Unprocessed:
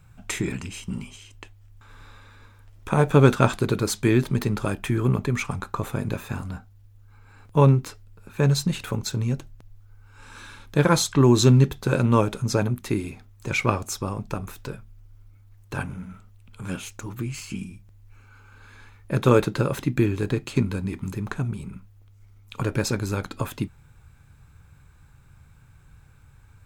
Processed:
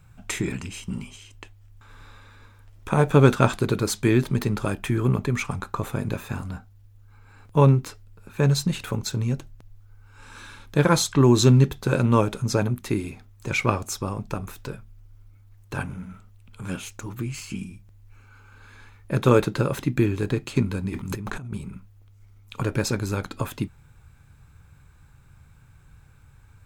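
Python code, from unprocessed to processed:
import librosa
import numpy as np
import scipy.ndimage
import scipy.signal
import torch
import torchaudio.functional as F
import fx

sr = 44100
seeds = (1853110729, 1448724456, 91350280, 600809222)

y = fx.over_compress(x, sr, threshold_db=-35.0, ratio=-1.0, at=(20.89, 21.56), fade=0.02)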